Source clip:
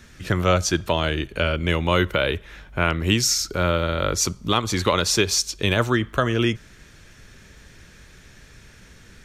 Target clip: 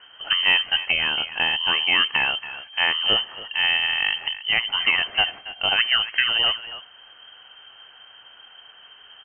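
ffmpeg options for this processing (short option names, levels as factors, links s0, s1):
-filter_complex "[0:a]asplit=2[s0][s1];[s1]adelay=280,highpass=300,lowpass=3400,asoftclip=type=hard:threshold=0.15,volume=0.251[s2];[s0][s2]amix=inputs=2:normalize=0,lowpass=f=2700:t=q:w=0.5098,lowpass=f=2700:t=q:w=0.6013,lowpass=f=2700:t=q:w=0.9,lowpass=f=2700:t=q:w=2.563,afreqshift=-3200"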